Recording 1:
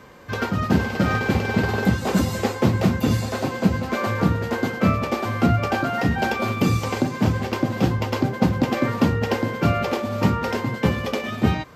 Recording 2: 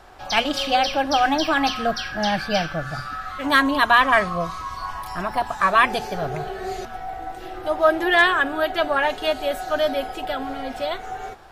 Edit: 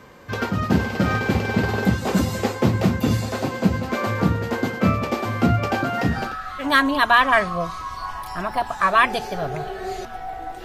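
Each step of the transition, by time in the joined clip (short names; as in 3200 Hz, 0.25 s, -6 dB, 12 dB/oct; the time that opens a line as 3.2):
recording 1
6.18 switch to recording 2 from 2.98 s, crossfade 0.36 s equal-power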